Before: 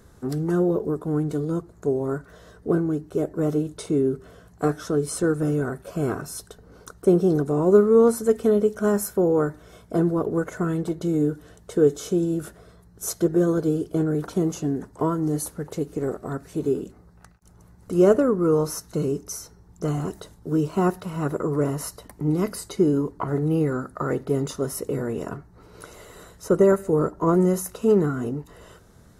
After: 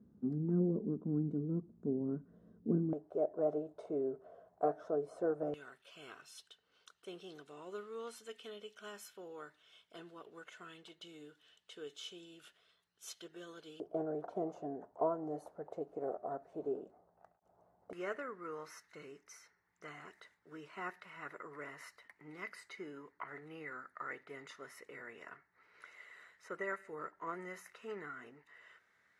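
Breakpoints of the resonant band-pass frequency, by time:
resonant band-pass, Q 4.6
220 Hz
from 0:02.93 650 Hz
from 0:05.54 3,000 Hz
from 0:13.80 680 Hz
from 0:17.93 2,000 Hz

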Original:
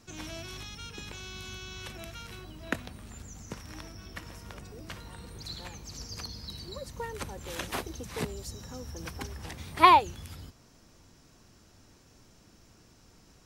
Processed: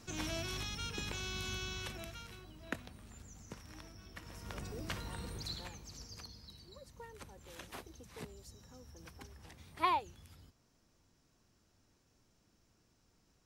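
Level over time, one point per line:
0:01.64 +1.5 dB
0:02.41 −8.5 dB
0:04.17 −8.5 dB
0:04.61 +1.5 dB
0:05.29 +1.5 dB
0:05.78 −6.5 dB
0:06.60 −14 dB

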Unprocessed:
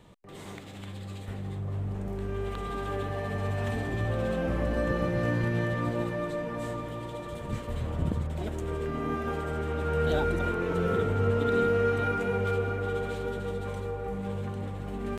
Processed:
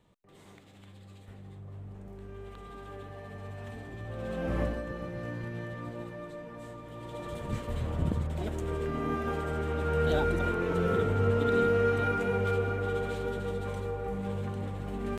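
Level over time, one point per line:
0:04.04 −11.5 dB
0:04.62 0 dB
0:04.83 −10 dB
0:06.81 −10 dB
0:07.25 −0.5 dB

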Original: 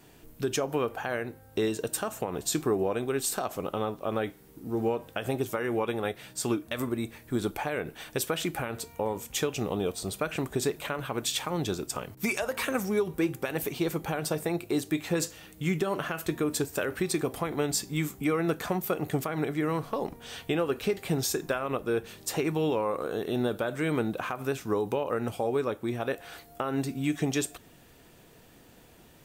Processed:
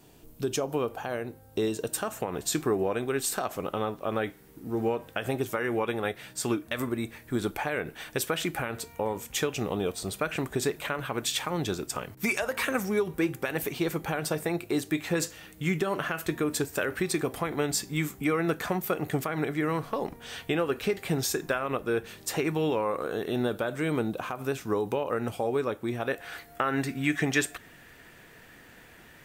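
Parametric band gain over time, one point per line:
parametric band 1,800 Hz 1 octave
0:01.62 −5.5 dB
0:02.16 +4 dB
0:23.36 +4 dB
0:24.25 −4.5 dB
0:24.60 +2 dB
0:25.98 +2 dB
0:26.62 +13 dB

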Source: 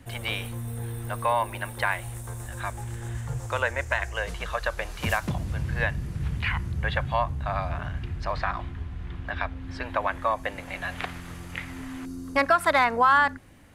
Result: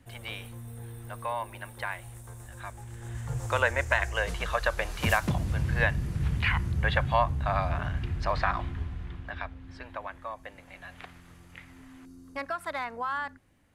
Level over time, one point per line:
0:02.88 −8.5 dB
0:03.48 +1 dB
0:08.82 +1 dB
0:09.28 −6 dB
0:10.19 −13 dB

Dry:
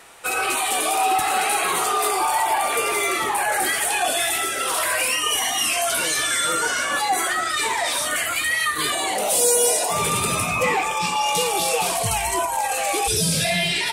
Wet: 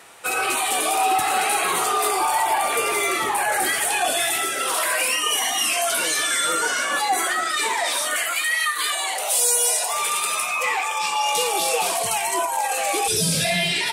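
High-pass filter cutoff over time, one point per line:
0:04.24 78 Hz
0:04.84 210 Hz
0:07.66 210 Hz
0:08.76 820 Hz
0:10.78 820 Hz
0:11.63 280 Hz
0:12.66 280 Hz
0:13.27 110 Hz

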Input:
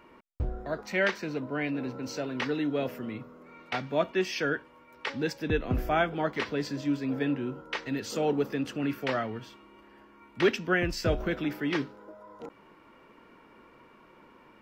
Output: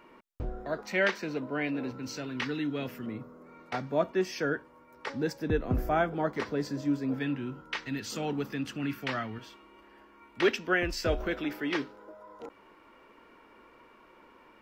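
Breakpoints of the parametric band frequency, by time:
parametric band −9 dB 1.2 octaves
79 Hz
from 0:01.91 590 Hz
from 0:03.06 2,900 Hz
from 0:07.14 510 Hz
from 0:09.38 150 Hz

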